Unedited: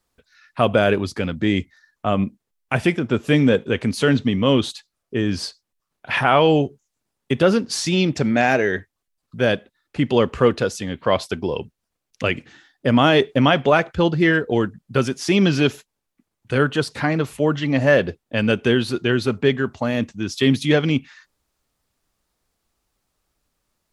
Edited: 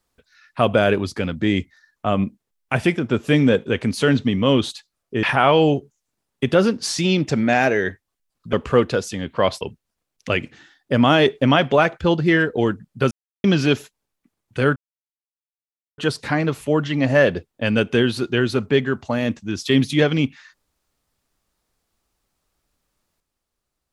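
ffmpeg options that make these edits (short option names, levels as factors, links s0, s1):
-filter_complex "[0:a]asplit=7[s0][s1][s2][s3][s4][s5][s6];[s0]atrim=end=5.232[s7];[s1]atrim=start=6.108:end=9.412[s8];[s2]atrim=start=10.208:end=11.292[s9];[s3]atrim=start=11.548:end=15.05,asetpts=PTS-STARTPTS,afade=t=out:st=3.498:d=0.004:c=hsin[s10];[s4]atrim=start=15.05:end=15.38,asetpts=PTS-STARTPTS,volume=0[s11];[s5]atrim=start=15.38:end=16.7,asetpts=PTS-STARTPTS,afade=t=in:d=0.004:c=hsin,afade=t=out:st=1.316:d=0.004:c=hsin,apad=pad_dur=1.22[s12];[s6]atrim=start=16.7,asetpts=PTS-STARTPTS,afade=t=in:d=0.004:c=hsin[s13];[s7][s8]acrossfade=d=0.004:c1=hsin:c2=hsin[s14];[s14][s9]acrossfade=d=0.004:c1=hsin:c2=hsin[s15];[s10][s11][s12][s13]concat=n=4:v=0:a=1[s16];[s15][s16]acrossfade=d=0.004:c1=hsin:c2=hsin"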